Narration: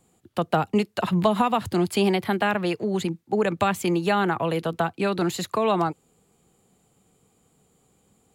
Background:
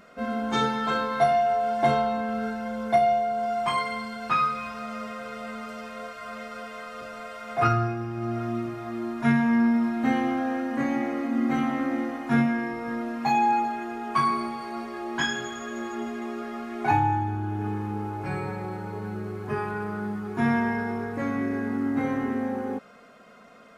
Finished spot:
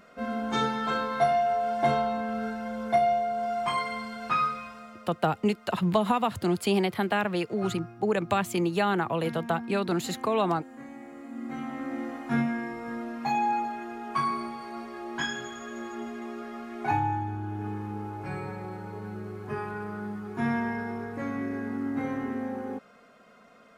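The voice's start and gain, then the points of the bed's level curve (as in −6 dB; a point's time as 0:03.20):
4.70 s, −3.5 dB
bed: 0:04.46 −2.5 dB
0:05.18 −17.5 dB
0:10.98 −17.5 dB
0:12.11 −4.5 dB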